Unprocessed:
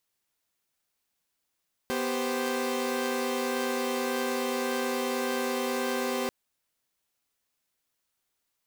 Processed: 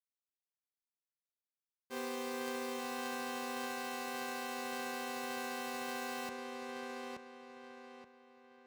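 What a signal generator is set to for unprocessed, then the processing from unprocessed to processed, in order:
chord B3/G4/C5 saw, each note -29.5 dBFS 4.39 s
expander -21 dBFS; HPF 68 Hz; on a send: darkening echo 0.876 s, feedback 37%, low-pass 4400 Hz, level -3 dB

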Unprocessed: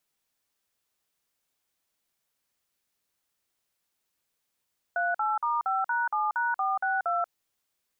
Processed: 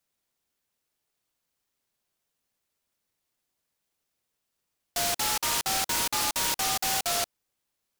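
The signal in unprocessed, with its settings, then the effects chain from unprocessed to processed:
DTMF "38*5#7#462", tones 0.185 s, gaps 48 ms, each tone -27 dBFS
noise-modulated delay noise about 4800 Hz, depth 0.21 ms

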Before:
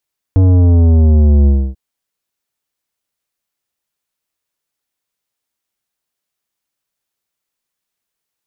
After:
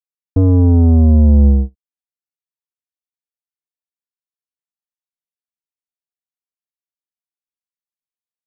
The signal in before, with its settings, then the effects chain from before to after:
sub drop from 95 Hz, over 1.39 s, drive 12 dB, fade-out 0.28 s, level -7 dB
gate -15 dBFS, range -25 dB; comb 4.1 ms, depth 52%

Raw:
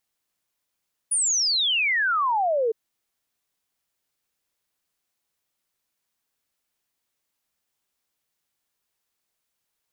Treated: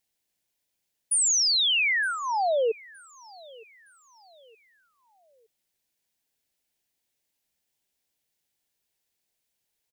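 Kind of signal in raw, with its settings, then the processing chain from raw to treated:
log sweep 9900 Hz -> 430 Hz 1.61 s -19.5 dBFS
bell 1200 Hz -11 dB 0.55 oct; feedback echo 0.916 s, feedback 40%, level -23.5 dB

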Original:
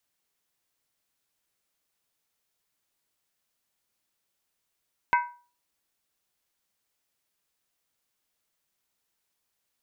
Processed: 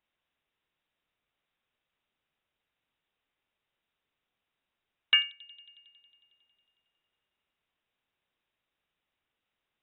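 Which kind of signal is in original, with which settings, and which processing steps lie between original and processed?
skin hit, lowest mode 968 Hz, decay 0.38 s, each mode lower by 5 dB, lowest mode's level -16.5 dB
bell 1100 Hz +2.5 dB 0.77 oct; dark delay 91 ms, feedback 79%, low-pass 550 Hz, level -15 dB; inverted band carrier 3800 Hz

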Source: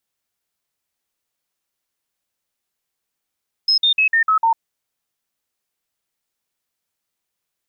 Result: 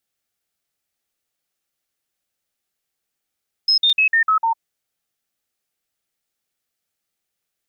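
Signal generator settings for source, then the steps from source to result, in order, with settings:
stepped sine 5150 Hz down, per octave 2, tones 6, 0.10 s, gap 0.05 s -12 dBFS
notch 1000 Hz, Q 5.5; crackling interface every 0.36 s, samples 256, repeat, from 0.65

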